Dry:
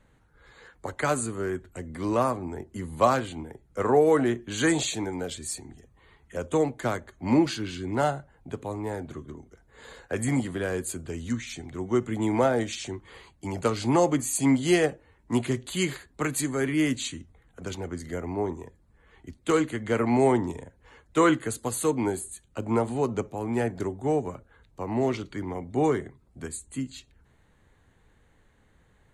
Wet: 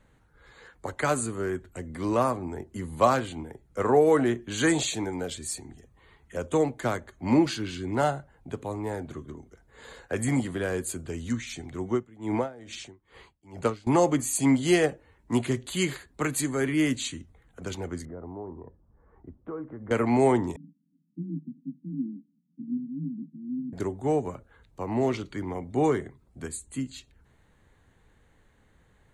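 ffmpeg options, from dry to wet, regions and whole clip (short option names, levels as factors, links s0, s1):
-filter_complex "[0:a]asettb=1/sr,asplit=3[s0][s1][s2];[s0]atrim=end=11.914[s3];[s1]atrim=start=11.91:end=13.87,asetpts=PTS-STARTPTS,afade=t=in:d=0.004:c=qsin,afade=t=out:st=1.956:d=0.004:c=qsin,highshelf=f=4200:g=-6,aeval=exprs='val(0)*pow(10,-22*(0.5-0.5*cos(2*PI*2.3*n/s))/20)':c=same[s4];[s2]atrim=start=13.866[s5];[s3][s4]acrossfade=d=0.004:c1=hsin:c2=qsin[s6];[s6][s5]acrossfade=d=0.004:c1=qsin:c2=hsin,asettb=1/sr,asplit=3[s7][s8][s9];[s7]atrim=end=18.054[s10];[s8]atrim=start=18.05:end=19.91,asetpts=PTS-STARTPTS,afade=t=in:d=0.004:c=qsin,afade=t=out:st=1.856:d=0.004:c=qsin,lowpass=f=1200:w=0.5412,lowpass=f=1200:w=1.3066,acompressor=threshold=0.0112:ratio=2.5:attack=3.2:release=140:knee=1:detection=peak[s11];[s9]atrim=start=19.906[s12];[s10][s11]acrossfade=d=0.004:c1=hsin:c2=qsin[s13];[s13][s12]acrossfade=d=0.004:c1=qsin:c2=hsin,asettb=1/sr,asplit=3[s14][s15][s16];[s14]atrim=end=20.564[s17];[s15]atrim=start=20.56:end=23.73,asetpts=PTS-STARTPTS,afade=t=in:d=0.004:c=qsin,afade=t=out:st=3.166:d=0.004:c=qsin,asuperpass=centerf=190:order=12:qfactor=1.4,afreqshift=18,asplit=2[s18][s19];[s19]adelay=18,volume=0.224[s20];[s18][s20]amix=inputs=2:normalize=0,atrim=end_sample=139797[s21];[s16]atrim=start=23.726[s22];[s17][s21]acrossfade=d=0.004:c1=hsin:c2=qsin[s23];[s23][s22]acrossfade=d=0.004:c1=qsin:c2=hsin"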